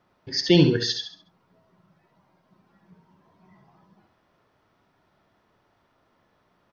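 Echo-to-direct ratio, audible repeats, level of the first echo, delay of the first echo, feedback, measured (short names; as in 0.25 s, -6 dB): -6.5 dB, 4, -7.0 dB, 68 ms, 35%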